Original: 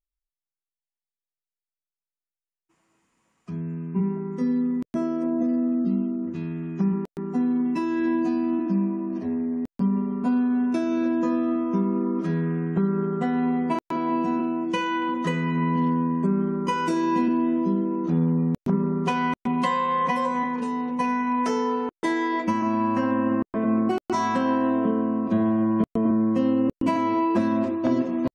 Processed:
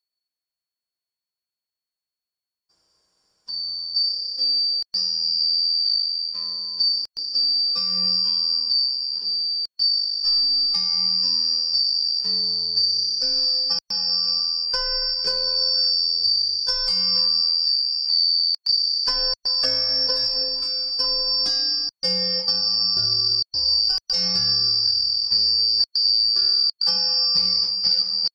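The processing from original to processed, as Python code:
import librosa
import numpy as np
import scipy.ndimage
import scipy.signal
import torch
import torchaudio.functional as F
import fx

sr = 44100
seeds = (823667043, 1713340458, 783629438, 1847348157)

y = fx.band_shuffle(x, sr, order='2341')
y = fx.highpass(y, sr, hz=640.0, slope=12, at=(17.41, 18.69))
y = y * librosa.db_to_amplitude(2.0)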